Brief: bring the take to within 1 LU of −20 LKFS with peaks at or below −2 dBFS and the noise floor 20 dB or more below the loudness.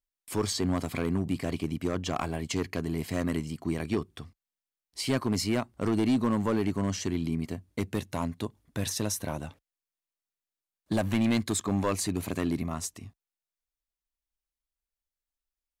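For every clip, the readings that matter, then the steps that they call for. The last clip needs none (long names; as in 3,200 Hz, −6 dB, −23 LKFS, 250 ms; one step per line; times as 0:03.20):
share of clipped samples 1.1%; peaks flattened at −20.0 dBFS; integrated loudness −30.5 LKFS; sample peak −20.0 dBFS; target loudness −20.0 LKFS
→ clipped peaks rebuilt −20 dBFS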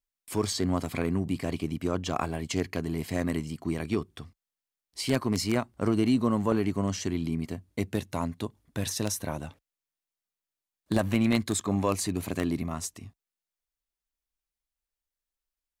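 share of clipped samples 0.0%; integrated loudness −30.0 LKFS; sample peak −11.0 dBFS; target loudness −20.0 LKFS
→ level +10 dB
brickwall limiter −2 dBFS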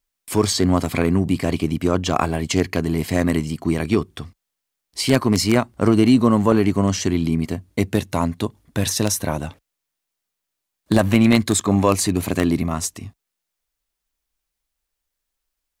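integrated loudness −20.0 LKFS; sample peak −2.0 dBFS; background noise floor −81 dBFS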